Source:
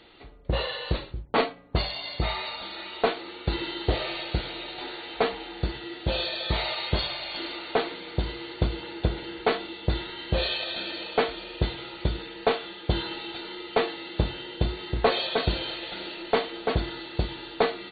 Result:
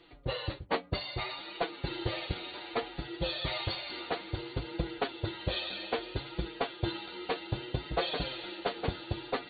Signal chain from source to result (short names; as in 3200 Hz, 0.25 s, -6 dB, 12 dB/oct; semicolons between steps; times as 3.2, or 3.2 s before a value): notch comb 220 Hz; flange 0.33 Hz, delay 5.8 ms, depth 5.3 ms, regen +7%; time stretch by phase-locked vocoder 0.53×